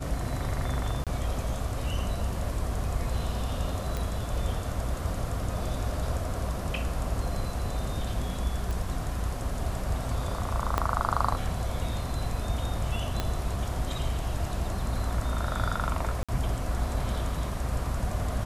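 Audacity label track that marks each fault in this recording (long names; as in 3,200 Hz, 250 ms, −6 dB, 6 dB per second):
1.040000	1.070000	drop-out 27 ms
3.970000	3.970000	click
8.710000	8.710000	click
10.780000	10.780000	click −12 dBFS
13.200000	13.200000	click −14 dBFS
16.230000	16.290000	drop-out 56 ms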